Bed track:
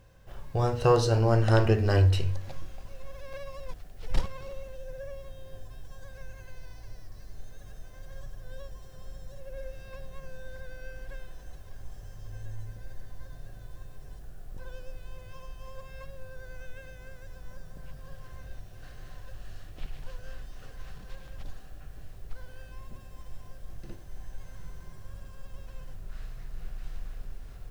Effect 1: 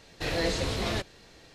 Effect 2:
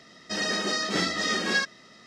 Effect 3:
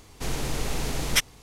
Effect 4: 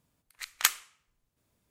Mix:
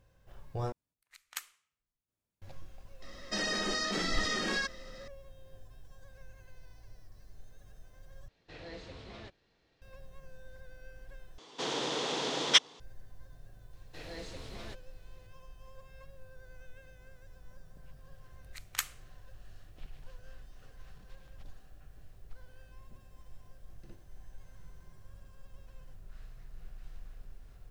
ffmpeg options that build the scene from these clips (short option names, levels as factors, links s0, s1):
-filter_complex "[4:a]asplit=2[s0][s1];[1:a]asplit=2[s2][s3];[0:a]volume=0.355[s4];[2:a]acompressor=threshold=0.0398:ratio=6:attack=3.2:release=140:knee=1:detection=peak[s5];[s2]lowpass=4400[s6];[3:a]highpass=f=200:w=0.5412,highpass=f=200:w=1.3066,equalizer=f=210:t=q:w=4:g=-8,equalizer=f=490:t=q:w=4:g=4,equalizer=f=1000:t=q:w=4:g=4,equalizer=f=2300:t=q:w=4:g=-4,equalizer=f=3400:t=q:w=4:g=9,lowpass=f=6400:w=0.5412,lowpass=f=6400:w=1.3066[s7];[s4]asplit=4[s8][s9][s10][s11];[s8]atrim=end=0.724[s12];[s0]atrim=end=1.7,asetpts=PTS-STARTPTS,volume=0.15[s13];[s9]atrim=start=2.416:end=8.284[s14];[s6]atrim=end=1.54,asetpts=PTS-STARTPTS,volume=0.126[s15];[s10]atrim=start=9.816:end=11.384[s16];[s7]atrim=end=1.42,asetpts=PTS-STARTPTS,volume=0.841[s17];[s11]atrim=start=12.796[s18];[s5]atrim=end=2.06,asetpts=PTS-STARTPTS,volume=0.891,afade=t=in:d=0.004:c=hsin,afade=t=out:st=2.056:d=0.004:c=hsin,adelay=3020[s19];[s3]atrim=end=1.54,asetpts=PTS-STARTPTS,volume=0.15,afade=t=in:d=0.004:c=hsin,afade=t=out:st=1.536:d=0.004:c=hsin,adelay=13730[s20];[s1]atrim=end=1.7,asetpts=PTS-STARTPTS,volume=0.335,afade=t=in:d=0.004:c=hsin,afade=t=out:st=1.696:d=0.004:c=hsin,adelay=18140[s21];[s12][s13]acrossfade=d=0.004:c1=hsin:c2=hsin[s22];[s22][s14]acrossfade=d=0.004:c1=hsin:c2=hsin[s23];[s23][s15]acrossfade=d=0.004:c1=hsin:c2=hsin[s24];[s24][s16]acrossfade=d=0.004:c1=hsin:c2=hsin[s25];[s25][s17]acrossfade=d=0.004:c1=hsin:c2=hsin[s26];[s26][s18]acrossfade=d=0.004:c1=hsin:c2=hsin[s27];[s27][s19][s20][s21]amix=inputs=4:normalize=0"